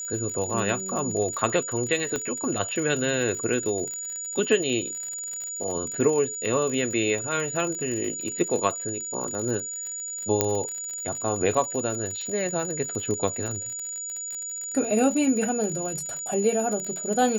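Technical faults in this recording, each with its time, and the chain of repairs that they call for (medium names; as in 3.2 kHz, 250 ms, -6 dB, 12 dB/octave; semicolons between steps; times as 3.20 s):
crackle 57 per s -30 dBFS
whine 6.9 kHz -31 dBFS
2.16 s: pop -14 dBFS
10.41 s: pop -4 dBFS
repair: de-click; band-stop 6.9 kHz, Q 30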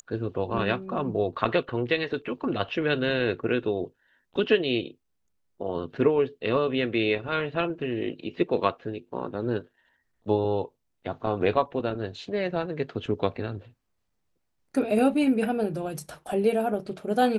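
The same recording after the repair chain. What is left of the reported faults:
2.16 s: pop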